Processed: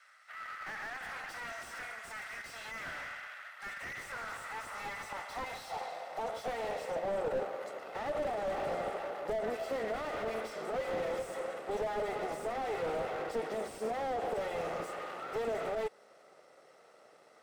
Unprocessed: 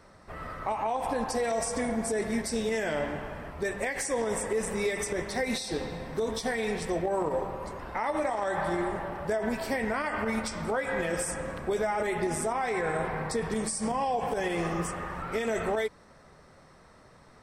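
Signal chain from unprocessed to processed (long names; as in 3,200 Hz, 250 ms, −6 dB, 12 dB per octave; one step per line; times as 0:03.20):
lower of the sound and its delayed copy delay 1.5 ms
high-pass filter sweep 1,600 Hz → 390 Hz, 0:03.96–0:07.55
slew-rate limiting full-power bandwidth 28 Hz
level −4.5 dB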